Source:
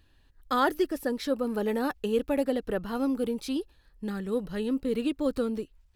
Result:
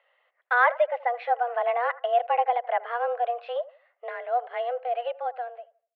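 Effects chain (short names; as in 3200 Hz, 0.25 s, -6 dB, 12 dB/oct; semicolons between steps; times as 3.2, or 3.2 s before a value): ending faded out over 1.35 s; mistuned SSB +240 Hz 320–2600 Hz; analogue delay 80 ms, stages 1024, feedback 30%, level -19 dB; gain +5 dB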